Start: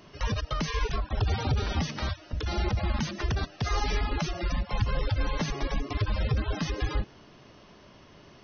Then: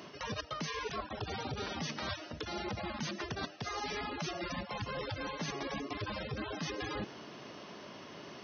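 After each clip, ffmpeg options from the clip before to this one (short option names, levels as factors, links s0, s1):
-af "highpass=190,areverse,acompressor=threshold=0.00891:ratio=10,areverse,volume=1.88"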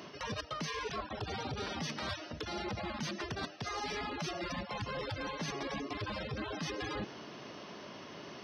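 -af "asoftclip=type=tanh:threshold=0.0335,volume=1.12"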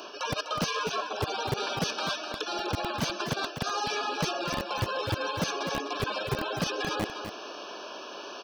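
-filter_complex "[0:a]acrossover=split=320[s0][s1];[s0]acrusher=bits=5:mix=0:aa=0.000001[s2];[s1]asuperstop=centerf=2000:order=20:qfactor=3.9[s3];[s2][s3]amix=inputs=2:normalize=0,aecho=1:1:251:0.376,volume=2.66"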